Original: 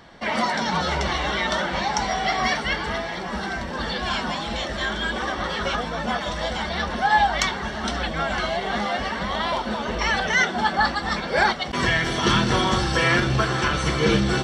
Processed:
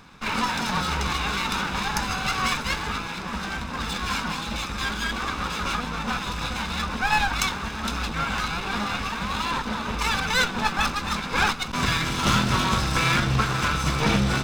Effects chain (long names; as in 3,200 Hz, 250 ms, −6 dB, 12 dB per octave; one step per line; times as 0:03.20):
lower of the sound and its delayed copy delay 0.8 ms
parametric band 360 Hz −7.5 dB 0.2 octaves